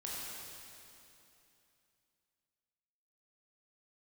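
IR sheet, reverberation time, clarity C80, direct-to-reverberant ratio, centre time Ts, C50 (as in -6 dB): 2.9 s, -1.5 dB, -6.0 dB, 0.177 s, -3.0 dB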